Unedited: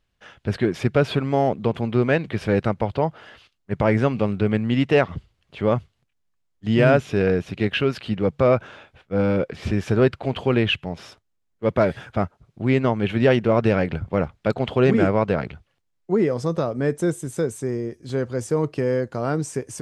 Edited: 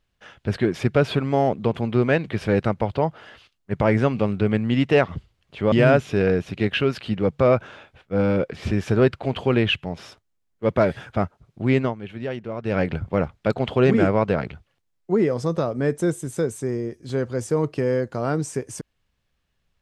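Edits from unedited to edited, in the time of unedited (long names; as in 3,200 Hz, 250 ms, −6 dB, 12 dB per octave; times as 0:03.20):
0:05.72–0:06.72: remove
0:12.80–0:13.80: duck −12.5 dB, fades 0.16 s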